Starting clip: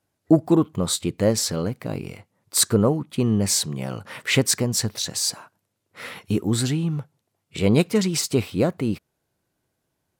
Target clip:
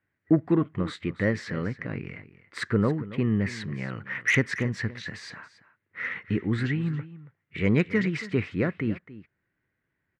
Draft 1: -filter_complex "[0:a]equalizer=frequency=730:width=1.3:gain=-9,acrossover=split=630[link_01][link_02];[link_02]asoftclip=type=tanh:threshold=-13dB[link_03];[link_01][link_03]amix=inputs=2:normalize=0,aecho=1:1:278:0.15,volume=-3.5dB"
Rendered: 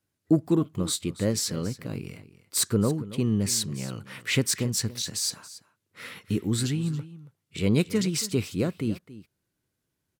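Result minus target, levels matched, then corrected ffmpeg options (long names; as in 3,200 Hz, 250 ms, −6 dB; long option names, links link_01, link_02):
2,000 Hz band −9.0 dB
-filter_complex "[0:a]lowpass=frequency=1900:width_type=q:width=4.9,equalizer=frequency=730:width=1.3:gain=-9,acrossover=split=630[link_01][link_02];[link_02]asoftclip=type=tanh:threshold=-13dB[link_03];[link_01][link_03]amix=inputs=2:normalize=0,aecho=1:1:278:0.15,volume=-3.5dB"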